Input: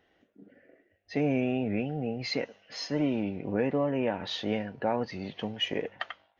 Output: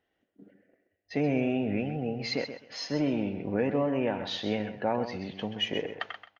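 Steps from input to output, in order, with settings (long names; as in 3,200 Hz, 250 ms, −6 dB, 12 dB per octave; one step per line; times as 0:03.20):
noise gate −55 dBFS, range −10 dB
on a send: repeating echo 130 ms, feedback 19%, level −10 dB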